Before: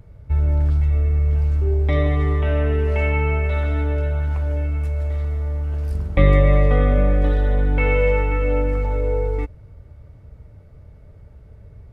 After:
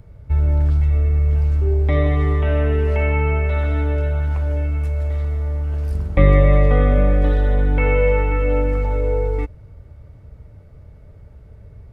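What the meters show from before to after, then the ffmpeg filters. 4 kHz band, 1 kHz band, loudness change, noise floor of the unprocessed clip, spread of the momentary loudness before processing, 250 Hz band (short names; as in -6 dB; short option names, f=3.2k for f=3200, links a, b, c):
n/a, +1.5 dB, +1.5 dB, -45 dBFS, 8 LU, +1.5 dB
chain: -filter_complex "[0:a]acrossover=split=2600[a][b];[b]acompressor=threshold=-43dB:ratio=4:attack=1:release=60[c];[a][c]amix=inputs=2:normalize=0,volume=1.5dB"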